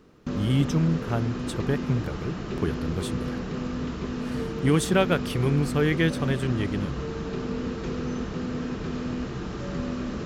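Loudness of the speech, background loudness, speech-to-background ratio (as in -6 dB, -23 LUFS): -27.0 LUFS, -31.5 LUFS, 4.5 dB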